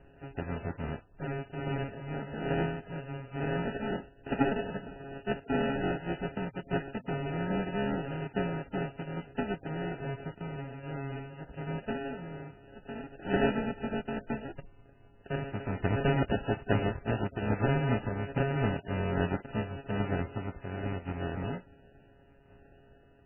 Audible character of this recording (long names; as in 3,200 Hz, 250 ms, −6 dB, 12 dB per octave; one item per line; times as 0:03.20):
a buzz of ramps at a fixed pitch in blocks of 64 samples
tremolo saw down 1.2 Hz, depth 45%
aliases and images of a low sample rate 1,100 Hz, jitter 0%
MP3